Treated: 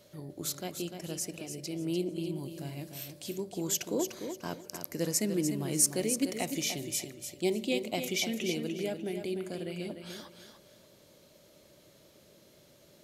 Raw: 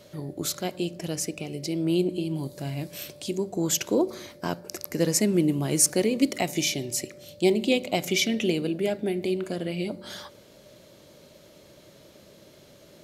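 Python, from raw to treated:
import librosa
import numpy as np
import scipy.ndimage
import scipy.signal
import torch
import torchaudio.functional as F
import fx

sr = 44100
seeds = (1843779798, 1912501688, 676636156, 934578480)

p1 = fx.high_shelf(x, sr, hz=6800.0, db=6.0)
p2 = p1 + fx.echo_feedback(p1, sr, ms=297, feedback_pct=26, wet_db=-8.0, dry=0)
y = p2 * 10.0 ** (-8.5 / 20.0)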